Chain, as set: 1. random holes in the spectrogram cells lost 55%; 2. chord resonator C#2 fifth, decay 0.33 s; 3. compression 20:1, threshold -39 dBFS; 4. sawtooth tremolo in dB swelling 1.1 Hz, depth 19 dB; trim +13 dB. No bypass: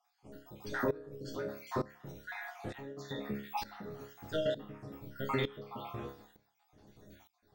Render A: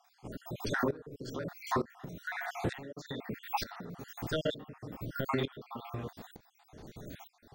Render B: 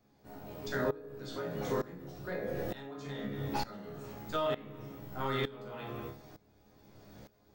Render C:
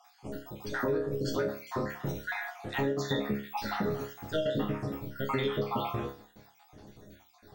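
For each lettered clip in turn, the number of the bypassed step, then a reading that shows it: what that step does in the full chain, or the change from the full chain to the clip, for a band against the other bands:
2, 500 Hz band -3.5 dB; 1, 2 kHz band -1.5 dB; 4, momentary loudness spread change -3 LU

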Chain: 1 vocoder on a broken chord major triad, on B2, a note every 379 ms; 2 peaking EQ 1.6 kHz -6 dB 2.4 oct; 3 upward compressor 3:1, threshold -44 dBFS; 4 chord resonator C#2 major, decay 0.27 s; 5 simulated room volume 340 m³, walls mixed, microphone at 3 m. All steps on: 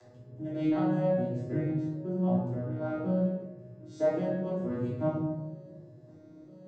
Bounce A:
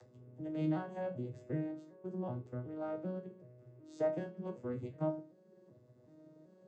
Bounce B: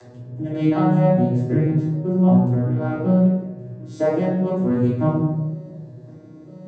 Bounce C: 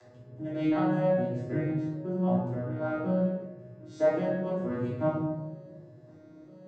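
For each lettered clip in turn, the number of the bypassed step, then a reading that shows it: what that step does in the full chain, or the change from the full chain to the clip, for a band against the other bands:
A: 5, echo-to-direct 8.0 dB to none; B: 4, 500 Hz band -3.5 dB; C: 2, 2 kHz band +4.5 dB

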